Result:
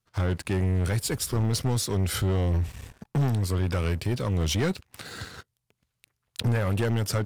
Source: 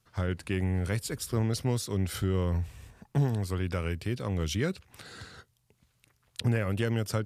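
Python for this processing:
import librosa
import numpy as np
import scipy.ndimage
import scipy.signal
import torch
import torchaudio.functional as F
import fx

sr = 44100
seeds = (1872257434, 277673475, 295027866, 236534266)

y = fx.leveller(x, sr, passes=3)
y = y * librosa.db_to_amplitude(-3.5)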